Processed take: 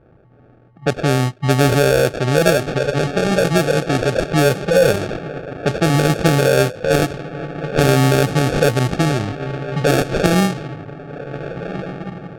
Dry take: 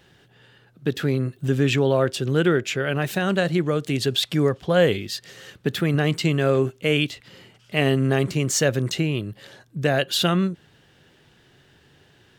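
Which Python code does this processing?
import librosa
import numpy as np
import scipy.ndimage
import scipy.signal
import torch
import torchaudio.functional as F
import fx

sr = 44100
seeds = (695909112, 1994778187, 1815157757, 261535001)

y = fx.low_shelf(x, sr, hz=130.0, db=7.0)
y = fx.echo_diffused(y, sr, ms=1523, feedback_pct=41, wet_db=-11.0)
y = fx.sample_hold(y, sr, seeds[0], rate_hz=1000.0, jitter_pct=0)
y = fx.formant_shift(y, sr, semitones=4)
y = fx.env_lowpass(y, sr, base_hz=1400.0, full_db=-14.0)
y = y * 10.0 ** (4.0 / 20.0)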